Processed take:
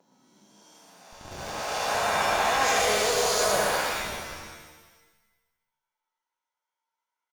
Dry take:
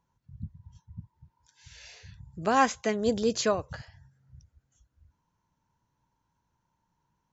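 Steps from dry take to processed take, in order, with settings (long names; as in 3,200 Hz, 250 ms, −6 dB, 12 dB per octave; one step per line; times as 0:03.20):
peak hold with a rise ahead of every peak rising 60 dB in 2.14 s
noise gate with hold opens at −44 dBFS
high-pass filter 490 Hz 24 dB per octave
parametric band 1,400 Hz −4 dB 1.9 octaves
reversed playback
downward compressor 12 to 1, threshold −33 dBFS, peak gain reduction 15 dB
reversed playback
multi-tap delay 51/119/149/583 ms −10/−4/−11/−16.5 dB
in parallel at −8 dB: comparator with hysteresis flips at −46.5 dBFS
on the sum: harmonic generator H 6 −20 dB, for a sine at −20.5 dBFS
reverb with rising layers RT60 1.1 s, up +7 semitones, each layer −2 dB, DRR 1 dB
level +6 dB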